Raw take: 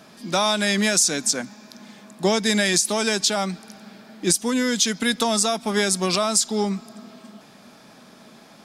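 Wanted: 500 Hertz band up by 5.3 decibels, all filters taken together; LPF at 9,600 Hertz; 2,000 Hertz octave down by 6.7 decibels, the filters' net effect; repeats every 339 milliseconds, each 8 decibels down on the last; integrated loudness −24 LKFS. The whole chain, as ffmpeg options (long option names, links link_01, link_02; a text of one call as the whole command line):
ffmpeg -i in.wav -af "lowpass=9600,equalizer=frequency=500:width_type=o:gain=7.5,equalizer=frequency=2000:width_type=o:gain=-9,aecho=1:1:339|678|1017|1356|1695:0.398|0.159|0.0637|0.0255|0.0102,volume=-4dB" out.wav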